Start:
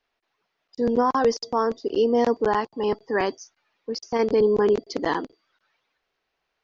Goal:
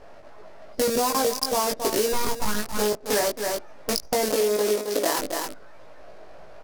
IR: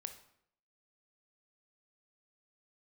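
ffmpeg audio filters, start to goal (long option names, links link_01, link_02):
-filter_complex "[0:a]aeval=exprs='val(0)+0.5*0.015*sgn(val(0))':channel_layout=same,acrusher=bits=5:dc=4:mix=0:aa=0.000001,equalizer=frequency=610:width=4.6:gain=12,asplit=3[link_01][link_02][link_03];[link_01]afade=type=out:start_time=2.12:duration=0.02[link_04];[link_02]aeval=exprs='abs(val(0))':channel_layout=same,afade=type=in:start_time=2.12:duration=0.02,afade=type=out:start_time=2.65:duration=0.02[link_05];[link_03]afade=type=in:start_time=2.65:duration=0.02[link_06];[link_04][link_05][link_06]amix=inputs=3:normalize=0,asettb=1/sr,asplit=3[link_07][link_08][link_09];[link_07]atrim=end=4.304[link_10];[link_08]atrim=start=4.3:end=5.19,asetpts=PTS-STARTPTS,afade=type=in:duration=0.004:curve=qsin,afade=type=out:start_time=0.886:duration=0.004:curve=qsin,highpass=250[link_11];[link_09]atrim=start=5.186[link_12];[link_10][link_11]acrossfade=duration=0.004:curve1=hsin:curve2=qsin[link_13];[link_13][link_12]acrossfade=duration=0.004:curve1=qsin:curve2=hsin,adynamicsmooth=sensitivity=5:basefreq=750,highshelf=frequency=3800:gain=7.5,asplit=2[link_14][link_15];[link_15]adelay=19,volume=-2dB[link_16];[link_14][link_16]amix=inputs=2:normalize=0,aecho=1:1:269:0.282,aexciter=amount=3.3:drive=2.3:freq=4500,acompressor=threshold=-20dB:ratio=6"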